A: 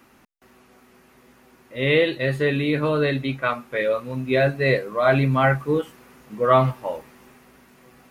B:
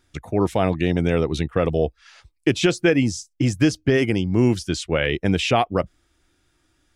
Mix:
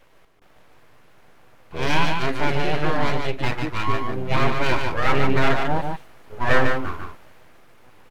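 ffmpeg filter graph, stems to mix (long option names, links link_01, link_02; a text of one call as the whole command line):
ffmpeg -i stem1.wav -i stem2.wav -filter_complex "[0:a]aeval=exprs='abs(val(0))':channel_layout=same,highshelf=frequency=3800:gain=-9,volume=2dB,asplit=3[link_01][link_02][link_03];[link_02]volume=-5dB[link_04];[1:a]lowpass=1200,volume=-13dB[link_05];[link_03]apad=whole_len=306791[link_06];[link_05][link_06]sidechaingate=range=-38dB:threshold=-43dB:ratio=16:detection=peak[link_07];[link_04]aecho=0:1:147:1[link_08];[link_01][link_07][link_08]amix=inputs=3:normalize=0" out.wav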